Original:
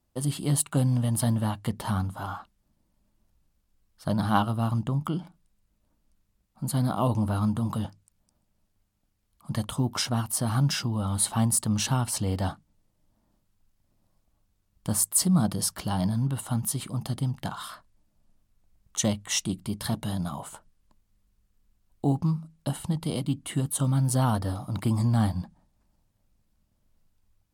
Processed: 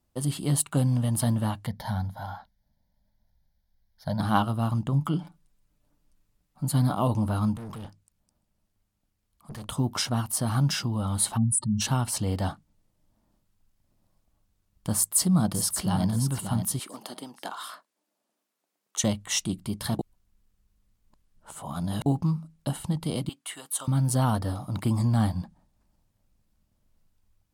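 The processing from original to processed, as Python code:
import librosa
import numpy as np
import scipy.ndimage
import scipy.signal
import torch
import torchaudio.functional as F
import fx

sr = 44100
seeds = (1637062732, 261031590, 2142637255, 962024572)

y = fx.fixed_phaser(x, sr, hz=1800.0, stages=8, at=(1.66, 4.2))
y = fx.comb(y, sr, ms=6.9, depth=0.52, at=(4.92, 6.94))
y = fx.tube_stage(y, sr, drive_db=36.0, bias=0.5, at=(7.56, 9.69))
y = fx.spec_expand(y, sr, power=2.5, at=(11.36, 11.8), fade=0.02)
y = fx.echo_throw(y, sr, start_s=14.96, length_s=1.09, ms=580, feedback_pct=25, wet_db=-8.0)
y = fx.highpass(y, sr, hz=300.0, slope=24, at=(16.79, 19.04))
y = fx.highpass(y, sr, hz=840.0, slope=12, at=(23.29, 23.88))
y = fx.edit(y, sr, fx.reverse_span(start_s=19.99, length_s=2.07), tone=tone)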